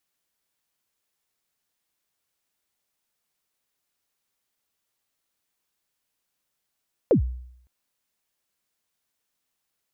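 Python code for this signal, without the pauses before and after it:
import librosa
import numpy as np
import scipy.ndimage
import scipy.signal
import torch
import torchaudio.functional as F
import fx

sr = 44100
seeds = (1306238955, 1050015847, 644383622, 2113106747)

y = fx.drum_kick(sr, seeds[0], length_s=0.56, level_db=-12, start_hz=580.0, end_hz=62.0, sweep_ms=106.0, decay_s=0.71, click=False)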